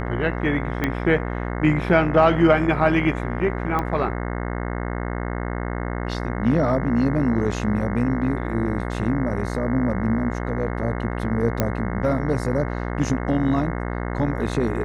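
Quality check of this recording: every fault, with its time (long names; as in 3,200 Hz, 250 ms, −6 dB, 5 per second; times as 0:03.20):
mains buzz 60 Hz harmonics 36 −27 dBFS
0:00.84: click −9 dBFS
0:03.79: click −13 dBFS
0:11.60: click −6 dBFS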